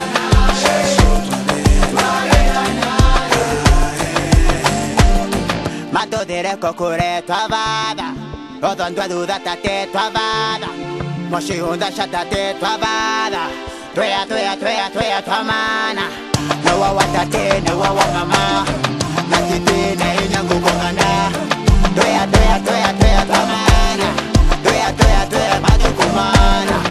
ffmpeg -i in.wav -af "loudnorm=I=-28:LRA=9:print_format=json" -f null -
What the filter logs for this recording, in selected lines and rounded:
"input_i" : "-15.8",
"input_tp" : "-1.5",
"input_lra" : "5.3",
"input_thresh" : "-25.8",